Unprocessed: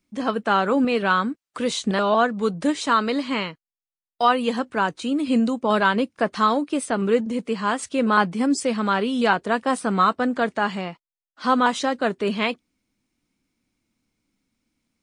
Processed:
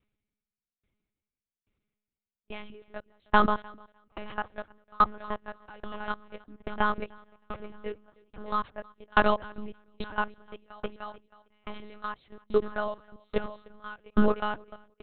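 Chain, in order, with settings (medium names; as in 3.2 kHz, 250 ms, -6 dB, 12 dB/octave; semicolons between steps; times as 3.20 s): reverse the whole clip; level held to a coarse grid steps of 20 dB; feedback delay 309 ms, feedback 56%, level -13 dB; monotone LPC vocoder at 8 kHz 210 Hz; sawtooth tremolo in dB decaying 1.2 Hz, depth 34 dB; trim +4 dB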